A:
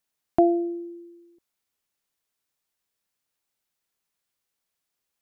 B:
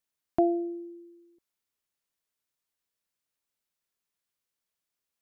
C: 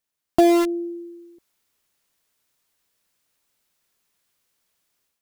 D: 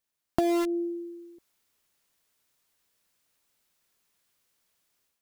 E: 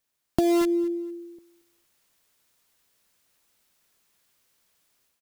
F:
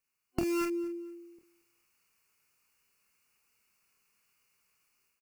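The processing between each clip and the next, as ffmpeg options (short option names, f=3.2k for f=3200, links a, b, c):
-af "bandreject=f=780:w=15,volume=-5dB"
-filter_complex "[0:a]dynaudnorm=f=420:g=3:m=11dB,asplit=2[a][b];[b]acrusher=bits=3:mix=0:aa=0.000001,volume=-5.5dB[c];[a][c]amix=inputs=2:normalize=0,volume=3dB"
-af "acompressor=threshold=-20dB:ratio=12,volume=-1.5dB"
-filter_complex "[0:a]acrossover=split=500|3000[a][b][c];[b]alimiter=level_in=1dB:limit=-24dB:level=0:latency=1:release=338,volume=-1dB[d];[a][d][c]amix=inputs=3:normalize=0,aecho=1:1:228|456:0.1|0.026,volume=5dB"
-af "superequalizer=6b=0.708:8b=0.501:10b=1.58:12b=2.24:13b=0.282,aecho=1:1:27|46:0.473|0.398,volume=-7dB"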